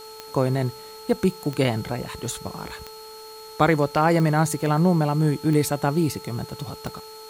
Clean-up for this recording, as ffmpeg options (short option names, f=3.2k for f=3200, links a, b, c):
-af "adeclick=t=4,bandreject=f=437.2:t=h:w=4,bandreject=f=874.4:t=h:w=4,bandreject=f=1.3116k:t=h:w=4,bandreject=f=4.3k:w=30,afwtdn=0.004"